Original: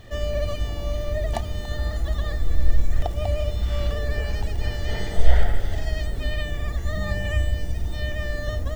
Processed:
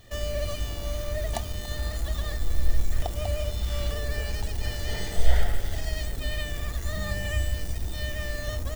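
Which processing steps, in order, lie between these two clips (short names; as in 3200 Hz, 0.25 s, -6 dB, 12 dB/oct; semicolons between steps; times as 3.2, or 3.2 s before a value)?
high shelf 4500 Hz +12 dB; in parallel at -6 dB: bit-crush 5-bit; on the sum: gain -8 dB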